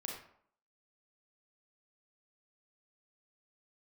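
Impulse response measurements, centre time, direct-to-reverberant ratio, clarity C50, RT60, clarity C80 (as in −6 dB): 41 ms, −1.5 dB, 3.0 dB, 0.65 s, 7.0 dB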